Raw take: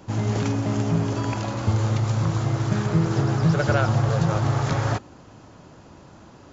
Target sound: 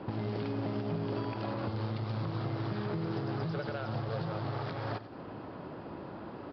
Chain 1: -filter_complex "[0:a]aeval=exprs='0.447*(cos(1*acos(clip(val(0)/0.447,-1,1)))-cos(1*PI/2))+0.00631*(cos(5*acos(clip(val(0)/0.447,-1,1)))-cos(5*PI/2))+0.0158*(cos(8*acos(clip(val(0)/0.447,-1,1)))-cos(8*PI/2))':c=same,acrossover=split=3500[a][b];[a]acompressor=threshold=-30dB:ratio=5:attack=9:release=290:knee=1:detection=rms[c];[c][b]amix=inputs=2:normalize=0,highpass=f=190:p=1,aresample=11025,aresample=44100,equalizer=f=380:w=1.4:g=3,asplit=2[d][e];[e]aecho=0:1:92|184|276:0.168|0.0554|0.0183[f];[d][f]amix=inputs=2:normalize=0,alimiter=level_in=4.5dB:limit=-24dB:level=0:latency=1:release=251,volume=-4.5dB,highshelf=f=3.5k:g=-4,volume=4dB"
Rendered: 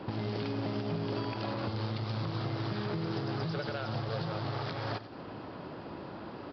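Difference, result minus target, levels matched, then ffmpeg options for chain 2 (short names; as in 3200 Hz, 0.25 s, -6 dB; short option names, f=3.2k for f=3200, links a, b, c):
4000 Hz band +5.5 dB
-filter_complex "[0:a]aeval=exprs='0.447*(cos(1*acos(clip(val(0)/0.447,-1,1)))-cos(1*PI/2))+0.00631*(cos(5*acos(clip(val(0)/0.447,-1,1)))-cos(5*PI/2))+0.0158*(cos(8*acos(clip(val(0)/0.447,-1,1)))-cos(8*PI/2))':c=same,acrossover=split=3500[a][b];[a]acompressor=threshold=-30dB:ratio=5:attack=9:release=290:knee=1:detection=rms[c];[c][b]amix=inputs=2:normalize=0,highpass=f=190:p=1,aresample=11025,aresample=44100,equalizer=f=380:w=1.4:g=3,asplit=2[d][e];[e]aecho=0:1:92|184|276:0.168|0.0554|0.0183[f];[d][f]amix=inputs=2:normalize=0,alimiter=level_in=4.5dB:limit=-24dB:level=0:latency=1:release=251,volume=-4.5dB,highshelf=f=3.5k:g=-15.5,volume=4dB"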